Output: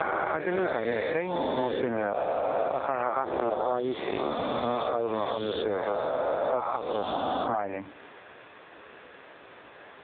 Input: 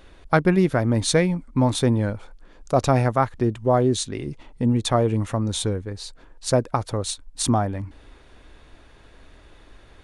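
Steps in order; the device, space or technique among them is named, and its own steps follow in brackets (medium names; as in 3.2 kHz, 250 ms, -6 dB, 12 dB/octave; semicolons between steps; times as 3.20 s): reverse spectral sustain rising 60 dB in 2.80 s; 5.24–5.77 s: high-pass 52 Hz 24 dB/octave; voicemail (band-pass 410–3000 Hz; compression 12:1, threshold -31 dBFS, peak gain reduction 21 dB; trim +8.5 dB; AMR-NB 5.15 kbps 8 kHz)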